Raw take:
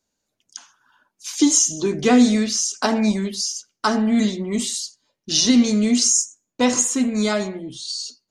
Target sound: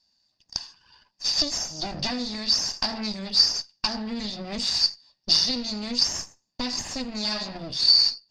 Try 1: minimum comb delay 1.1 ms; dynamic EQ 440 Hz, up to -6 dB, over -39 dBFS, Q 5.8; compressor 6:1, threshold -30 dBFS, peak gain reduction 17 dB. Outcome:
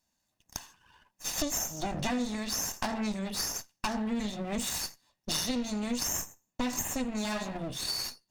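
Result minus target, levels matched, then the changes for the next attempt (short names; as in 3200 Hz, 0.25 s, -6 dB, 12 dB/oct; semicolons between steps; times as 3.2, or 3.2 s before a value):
4000 Hz band -6.0 dB
add after compressor: synth low-pass 4800 Hz, resonance Q 16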